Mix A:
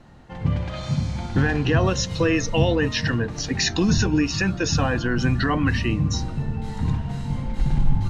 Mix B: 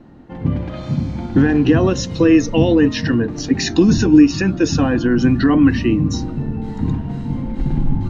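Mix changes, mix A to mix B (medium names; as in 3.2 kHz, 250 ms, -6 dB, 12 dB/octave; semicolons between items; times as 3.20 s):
background: add low-pass 2.7 kHz 6 dB/octave; master: add peaking EQ 290 Hz +13 dB 1.1 oct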